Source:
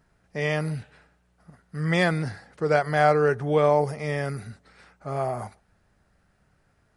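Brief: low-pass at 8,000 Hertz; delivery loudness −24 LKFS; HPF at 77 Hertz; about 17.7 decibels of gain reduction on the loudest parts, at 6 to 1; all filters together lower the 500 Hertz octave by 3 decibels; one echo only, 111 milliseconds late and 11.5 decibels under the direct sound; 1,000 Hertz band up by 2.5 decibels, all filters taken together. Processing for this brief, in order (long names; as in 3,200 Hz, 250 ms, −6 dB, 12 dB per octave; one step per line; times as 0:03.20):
high-pass filter 77 Hz
low-pass filter 8,000 Hz
parametric band 500 Hz −5.5 dB
parametric band 1,000 Hz +6.5 dB
downward compressor 6 to 1, threshold −34 dBFS
single-tap delay 111 ms −11.5 dB
level +14.5 dB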